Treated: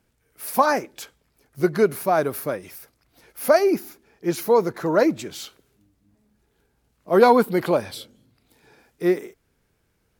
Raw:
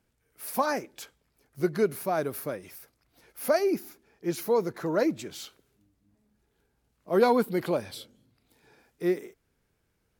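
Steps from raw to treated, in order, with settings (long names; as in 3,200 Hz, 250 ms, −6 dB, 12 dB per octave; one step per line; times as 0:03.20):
dynamic equaliser 1,000 Hz, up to +4 dB, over −37 dBFS, Q 0.78
level +5.5 dB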